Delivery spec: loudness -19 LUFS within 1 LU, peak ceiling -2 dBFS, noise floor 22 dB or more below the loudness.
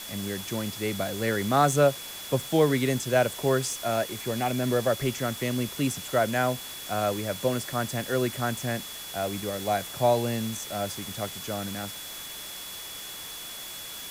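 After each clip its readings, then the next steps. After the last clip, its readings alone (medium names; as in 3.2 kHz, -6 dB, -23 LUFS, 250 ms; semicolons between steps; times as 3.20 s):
steady tone 3.4 kHz; tone level -42 dBFS; noise floor -40 dBFS; noise floor target -50 dBFS; loudness -28.0 LUFS; peak level -8.5 dBFS; loudness target -19.0 LUFS
-> band-stop 3.4 kHz, Q 30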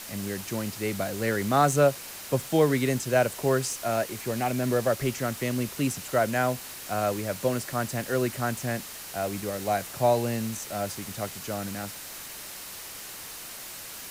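steady tone not found; noise floor -41 dBFS; noise floor target -51 dBFS
-> noise reduction 10 dB, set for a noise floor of -41 dBFS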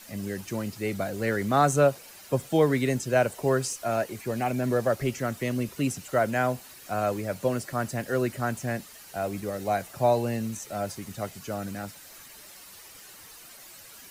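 noise floor -48 dBFS; noise floor target -50 dBFS
-> noise reduction 6 dB, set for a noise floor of -48 dBFS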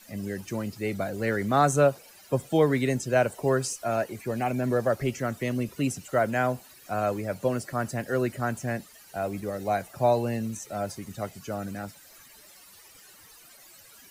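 noise floor -53 dBFS; loudness -28.0 LUFS; peak level -9.0 dBFS; loudness target -19.0 LUFS
-> trim +9 dB; peak limiter -2 dBFS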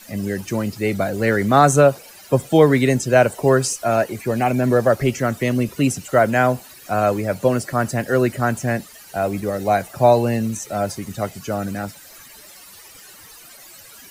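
loudness -19.0 LUFS; peak level -2.0 dBFS; noise floor -44 dBFS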